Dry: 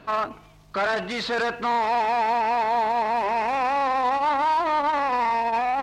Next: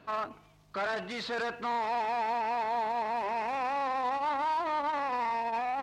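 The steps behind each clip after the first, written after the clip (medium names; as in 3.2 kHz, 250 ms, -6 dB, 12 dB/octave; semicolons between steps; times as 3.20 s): high-pass 48 Hz; trim -8.5 dB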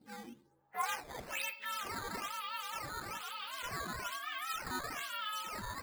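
frequency axis rescaled in octaves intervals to 125%; band-pass sweep 250 Hz -> 2.9 kHz, 0.38–1.09 s; decimation with a swept rate 9×, swing 160% 1.1 Hz; trim +5.5 dB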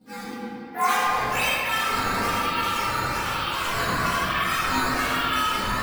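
simulated room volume 200 m³, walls hard, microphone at 1.8 m; trim +5 dB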